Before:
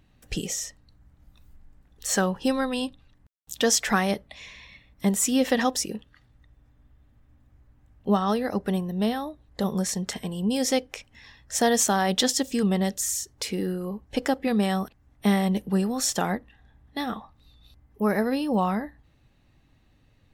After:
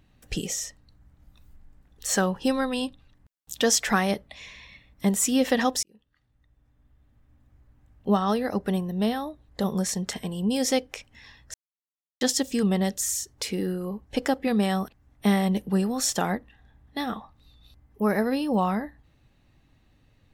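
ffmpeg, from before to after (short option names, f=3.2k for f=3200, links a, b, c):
-filter_complex "[0:a]asplit=4[a][b][c][d];[a]atrim=end=5.83,asetpts=PTS-STARTPTS,afade=t=out:st=5.826:d=0.004:c=hsin[e];[b]atrim=start=5.83:end=11.54,asetpts=PTS-STARTPTS,afade=t=in:d=2.39:c=qsin,afade=t=out:st=5.706:d=0.004:c=hsin[f];[c]atrim=start=11.54:end=12.21,asetpts=PTS-STARTPTS,volume=0[g];[d]atrim=start=12.21,asetpts=PTS-STARTPTS,afade=t=in:d=0.004:c=hsin[h];[e][f][g][h]concat=n=4:v=0:a=1"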